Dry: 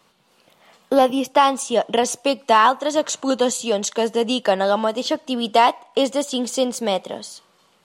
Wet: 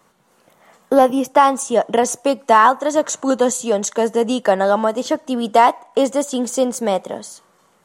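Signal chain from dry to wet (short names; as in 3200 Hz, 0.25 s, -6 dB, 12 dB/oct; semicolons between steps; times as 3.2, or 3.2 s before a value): band shelf 3500 Hz -8.5 dB 1.3 oct; gain +3 dB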